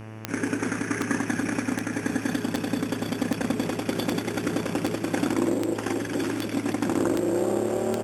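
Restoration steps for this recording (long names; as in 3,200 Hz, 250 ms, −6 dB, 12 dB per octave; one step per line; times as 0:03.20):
click removal
hum removal 109.7 Hz, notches 27
echo removal 94 ms −10 dB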